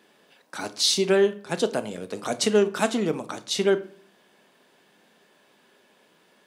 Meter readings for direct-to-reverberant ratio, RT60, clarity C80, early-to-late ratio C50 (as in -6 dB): 11.0 dB, 0.45 s, 21.0 dB, 17.0 dB